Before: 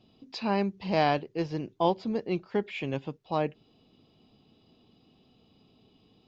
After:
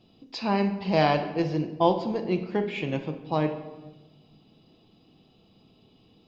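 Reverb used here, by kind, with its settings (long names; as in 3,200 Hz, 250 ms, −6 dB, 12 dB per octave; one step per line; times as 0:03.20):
rectangular room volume 610 cubic metres, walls mixed, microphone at 0.73 metres
level +2 dB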